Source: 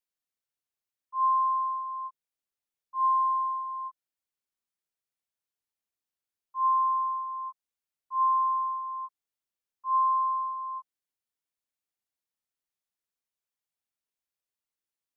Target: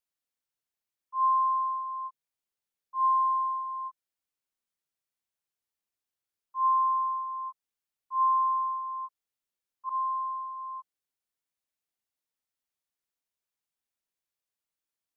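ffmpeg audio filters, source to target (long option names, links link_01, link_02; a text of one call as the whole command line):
ffmpeg -i in.wav -filter_complex "[0:a]asettb=1/sr,asplit=3[link_01][link_02][link_03];[link_01]atrim=end=9.894[link_04];[link_02]atrim=start=9.89:end=10.79,asetpts=PTS-STARTPTS,afade=type=in:duration=0.004:curve=qsin,afade=type=out:start_time=0.896:duration=0.004:curve=qsin,adynamicequalizer=threshold=0.0141:dfrequency=990:dqfactor=2.4:tfrequency=990:tqfactor=2.4:attack=5:release=100:ratio=0.375:range=3:mode=cutabove:tftype=bell[link_05];[link_03]atrim=start=10.786[link_06];[link_04][link_05]acrossfade=duration=0.004:curve1=hsin:curve2=qsin[link_07];[link_07][link_06]acrossfade=duration=0.004:curve1=qsin:curve2=hsin" out.wav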